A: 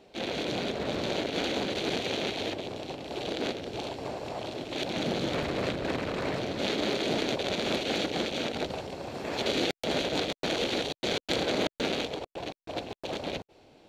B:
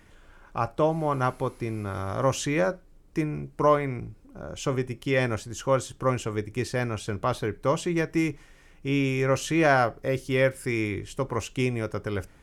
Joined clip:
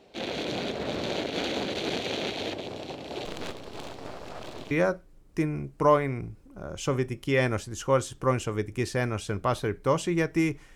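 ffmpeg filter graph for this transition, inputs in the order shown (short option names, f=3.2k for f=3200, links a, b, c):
-filter_complex "[0:a]asettb=1/sr,asplit=3[a][b][c];[a]atrim=end=3.254[d];[b]atrim=start=3.25:end=4.71,asetpts=PTS-STARTPTS,afade=t=in:d=0.004:c=qsin,afade=t=out:st=1.456:d=0.004:c=qsin,aeval=exprs='max(val(0),0)':c=same[e];[c]atrim=start=4.706[f];[d][e]acrossfade=d=0.004:c1=hsin:c2=qsin[g];[g][f]acrossfade=d=0.004:c1=qsin:c2=hsin,apad=whole_dur=10.75,atrim=end=10.75,atrim=end=4.712[h];[1:a]atrim=start=2.498:end=8.54[i];[h][i]acrossfade=d=0.004:c1=hsin:c2=hsin"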